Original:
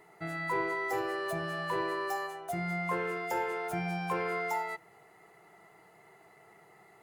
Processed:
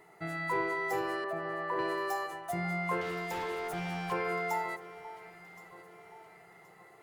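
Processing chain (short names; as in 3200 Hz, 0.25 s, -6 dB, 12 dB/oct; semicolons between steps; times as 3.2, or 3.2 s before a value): 1.24–1.79 three-band isolator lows -13 dB, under 230 Hz, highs -17 dB, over 2000 Hz; 3.01–4.12 overloaded stage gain 34 dB; echo with dull and thin repeats by turns 0.536 s, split 1500 Hz, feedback 65%, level -13 dB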